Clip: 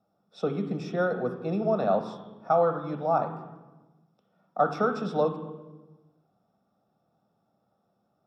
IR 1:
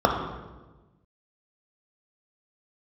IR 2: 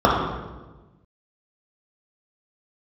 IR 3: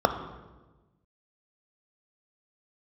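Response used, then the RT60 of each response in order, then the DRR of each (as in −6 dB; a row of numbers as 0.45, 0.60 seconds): 3; 1.2, 1.2, 1.2 seconds; 1.0, −4.5, 7.5 decibels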